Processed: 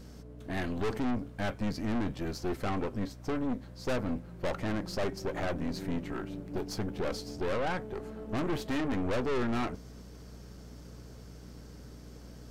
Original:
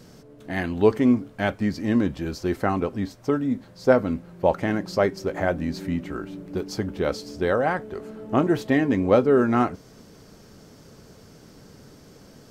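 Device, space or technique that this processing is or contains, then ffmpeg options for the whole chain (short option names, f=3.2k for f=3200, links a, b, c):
valve amplifier with mains hum: -af "aeval=exprs='(tanh(25.1*val(0)+0.65)-tanh(0.65))/25.1':c=same,aeval=exprs='val(0)+0.00447*(sin(2*PI*60*n/s)+sin(2*PI*2*60*n/s)/2+sin(2*PI*3*60*n/s)/3+sin(2*PI*4*60*n/s)/4+sin(2*PI*5*60*n/s)/5)':c=same,volume=-1dB"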